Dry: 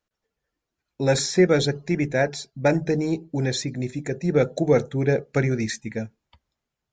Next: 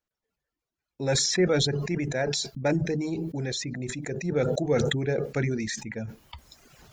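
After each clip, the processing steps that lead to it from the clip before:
reverb reduction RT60 0.62 s
level that may fall only so fast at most 24 dB per second
level −6.5 dB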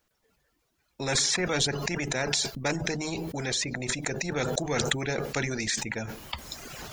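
every bin compressed towards the loudest bin 2 to 1
level +2.5 dB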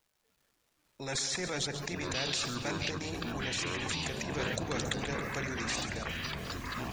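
surface crackle 330 per second −52 dBFS
echo with a time of its own for lows and highs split 690 Hz, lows 197 ms, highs 137 ms, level −10 dB
delay with pitch and tempo change per echo 412 ms, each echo −7 semitones, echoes 3
level −8.5 dB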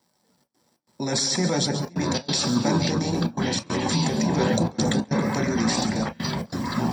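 gate pattern "xxxx.xx.xxxxx" 138 BPM −24 dB
convolution reverb, pre-delay 3 ms, DRR 3.5 dB
level +2.5 dB

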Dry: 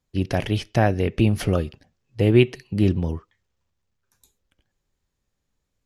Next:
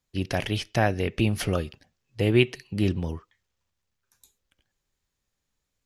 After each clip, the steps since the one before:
tilt shelving filter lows −3.5 dB
level −2 dB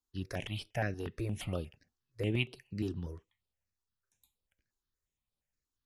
step-sequenced phaser 8.5 Hz 570–6,500 Hz
level −9 dB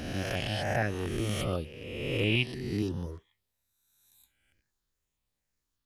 peak hold with a rise ahead of every peak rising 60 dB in 1.55 s
level +2.5 dB

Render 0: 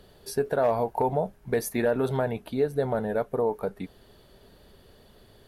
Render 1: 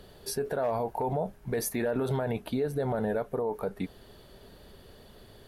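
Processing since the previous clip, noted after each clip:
brickwall limiter −24 dBFS, peak gain reduction 9.5 dB
level +2.5 dB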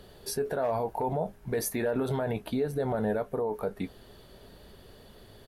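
double-tracking delay 19 ms −12.5 dB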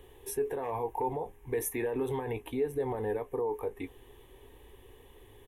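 phaser with its sweep stopped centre 940 Hz, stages 8

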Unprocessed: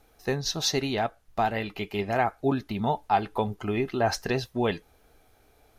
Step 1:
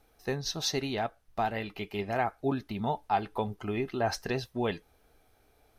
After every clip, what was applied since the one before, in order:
notch filter 6,900 Hz, Q 15
level −4.5 dB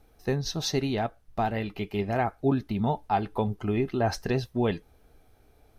low-shelf EQ 410 Hz +8.5 dB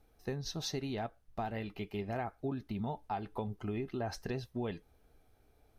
downward compressor 4 to 1, threshold −26 dBFS, peak gain reduction 6.5 dB
level −7.5 dB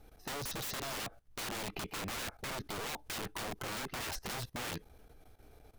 wrap-around overflow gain 38 dB
output level in coarse steps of 17 dB
level +11.5 dB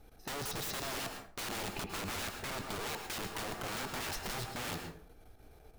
dense smooth reverb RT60 0.51 s, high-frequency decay 0.6×, pre-delay 95 ms, DRR 5 dB

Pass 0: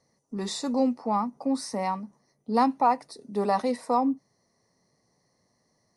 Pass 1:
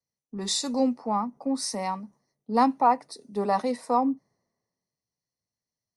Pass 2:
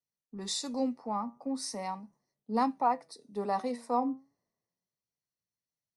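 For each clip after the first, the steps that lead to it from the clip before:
in parallel at 0 dB: downward compressor, threshold −31 dBFS, peak gain reduction 13.5 dB; on the sum: multiband upward and downward expander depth 70%; level −3.5 dB
flanger 0.39 Hz, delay 4.5 ms, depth 4.1 ms, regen +85%; level −2.5 dB

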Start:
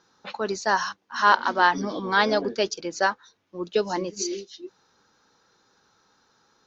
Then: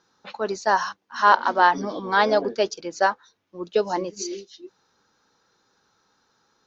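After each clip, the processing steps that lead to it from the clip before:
dynamic equaliser 680 Hz, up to +7 dB, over −33 dBFS, Q 0.76
level −2.5 dB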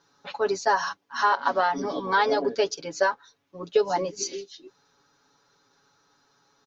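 downward compressor 6 to 1, threshold −19 dBFS, peak gain reduction 9.5 dB
comb filter 7.1 ms, depth 100%
level −1.5 dB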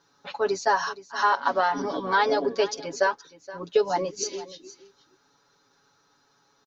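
single-tap delay 471 ms −17.5 dB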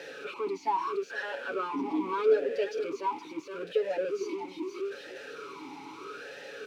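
converter with a step at zero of −32.5 dBFS
power curve on the samples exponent 0.7
formant filter swept between two vowels e-u 0.78 Hz

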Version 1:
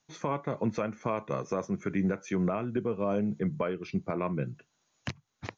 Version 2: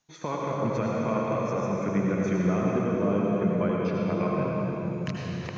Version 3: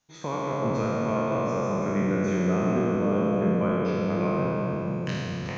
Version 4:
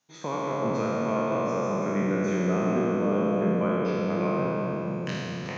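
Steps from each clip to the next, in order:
convolution reverb RT60 4.1 s, pre-delay 73 ms, DRR −4 dB; level −1 dB
peak hold with a decay on every bin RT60 2.09 s; level −2 dB
high-pass filter 150 Hz 12 dB per octave

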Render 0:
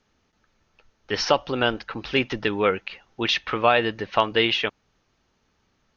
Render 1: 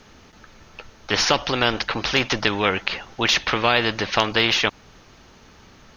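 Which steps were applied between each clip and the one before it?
every bin compressed towards the loudest bin 2 to 1
level +3.5 dB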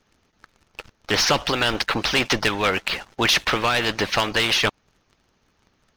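leveller curve on the samples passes 3
harmonic and percussive parts rebalanced harmonic −7 dB
level −7.5 dB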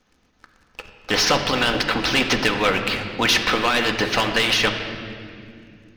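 on a send at −3 dB: high-frequency loss of the air 66 metres + convolution reverb RT60 2.5 s, pre-delay 4 ms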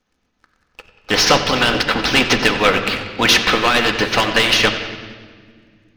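bucket-brigade delay 93 ms, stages 4,096, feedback 70%, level −12.5 dB
expander for the loud parts 1.5 to 1, over −40 dBFS
level +6 dB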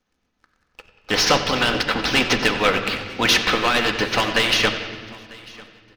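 repeating echo 946 ms, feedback 30%, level −23 dB
level −4 dB

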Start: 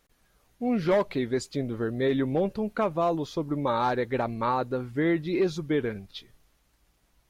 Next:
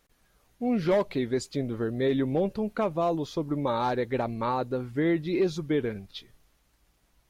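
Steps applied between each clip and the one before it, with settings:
dynamic equaliser 1,400 Hz, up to −4 dB, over −38 dBFS, Q 1.1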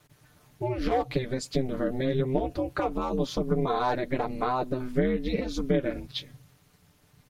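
downward compressor, threshold −30 dBFS, peak gain reduction 10 dB
comb filter 6.7 ms, depth 90%
ring modulation 130 Hz
level +6.5 dB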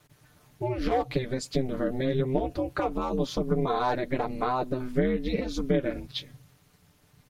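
no processing that can be heard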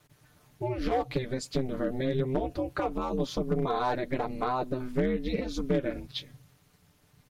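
gain into a clipping stage and back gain 16.5 dB
level −2 dB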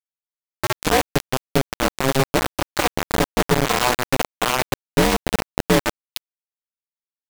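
bit reduction 4 bits
level +8.5 dB

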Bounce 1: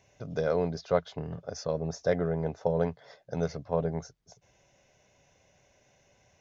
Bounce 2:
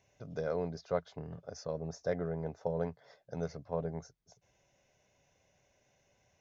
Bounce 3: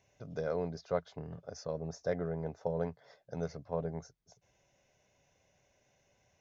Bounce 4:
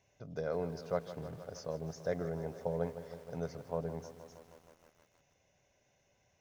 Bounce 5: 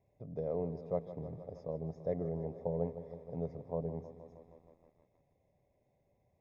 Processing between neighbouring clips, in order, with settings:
dynamic equaliser 3,200 Hz, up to −5 dB, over −60 dBFS, Q 2; level −7 dB
no processing that can be heard
feedback echo at a low word length 157 ms, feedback 80%, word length 9 bits, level −13 dB; level −1.5 dB
moving average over 30 samples; level +1.5 dB

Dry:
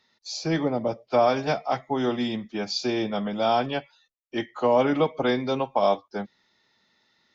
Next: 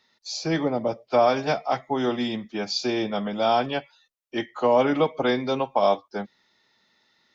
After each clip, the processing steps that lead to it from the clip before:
low-shelf EQ 190 Hz −4 dB
level +1.5 dB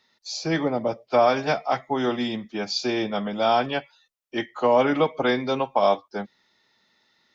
dynamic equaliser 1,700 Hz, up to +3 dB, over −34 dBFS, Q 0.97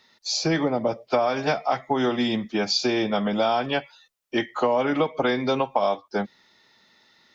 downward compressor 5 to 1, threshold −26 dBFS, peak gain reduction 11.5 dB
level +6.5 dB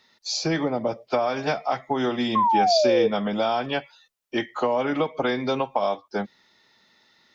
sound drawn into the spectrogram fall, 0:02.35–0:03.08, 440–1,100 Hz −18 dBFS
level −1.5 dB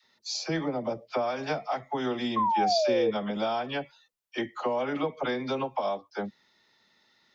all-pass dispersion lows, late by 43 ms, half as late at 620 Hz
level −5.5 dB

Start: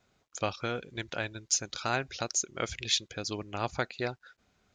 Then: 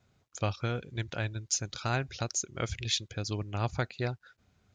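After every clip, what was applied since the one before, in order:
parametric band 100 Hz +12 dB 1.6 octaves
level −2.5 dB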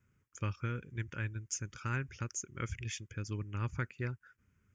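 phaser with its sweep stopped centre 1,700 Hz, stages 4
level −3 dB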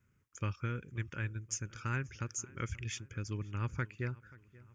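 feedback echo with a low-pass in the loop 532 ms, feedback 50%, low-pass 3,700 Hz, level −21.5 dB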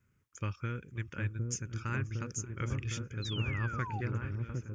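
echo whose low-pass opens from repeat to repeat 759 ms, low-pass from 400 Hz, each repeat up 1 octave, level 0 dB
sound drawn into the spectrogram fall, 0:03.22–0:04.01, 730–4,200 Hz −42 dBFS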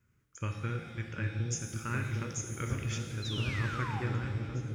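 reverb with rising layers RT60 1.4 s, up +7 semitones, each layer −8 dB, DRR 4 dB

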